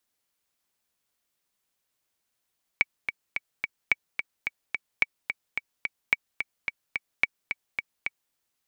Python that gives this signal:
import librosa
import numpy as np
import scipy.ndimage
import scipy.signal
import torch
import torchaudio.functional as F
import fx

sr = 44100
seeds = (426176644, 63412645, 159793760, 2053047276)

y = fx.click_track(sr, bpm=217, beats=4, bars=5, hz=2270.0, accent_db=8.0, level_db=-6.5)